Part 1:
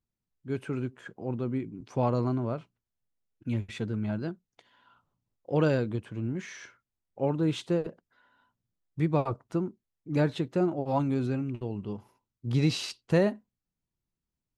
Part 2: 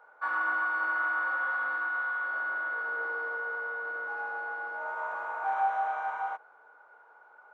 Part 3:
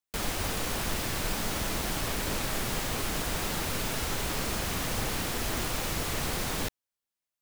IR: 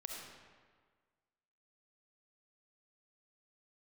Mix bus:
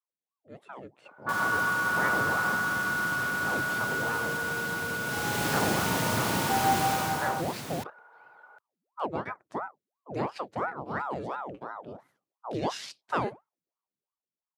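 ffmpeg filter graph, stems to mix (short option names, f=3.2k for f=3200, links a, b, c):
-filter_complex "[0:a]aeval=exprs='val(0)*sin(2*PI*660*n/s+660*0.75/2.9*sin(2*PI*2.9*n/s))':c=same,volume=-13.5dB[a];[1:a]adelay=1050,volume=-9dB[b];[2:a]lowshelf=f=390:g=6,adelay=1150,volume=-9.5dB,afade=t=in:st=5.03:d=0.41:silence=0.398107,afade=t=out:st=6.85:d=0.48:silence=0.316228[c];[a][b][c]amix=inputs=3:normalize=0,highpass=f=110:w=0.5412,highpass=f=110:w=1.3066,dynaudnorm=f=110:g=17:m=11dB"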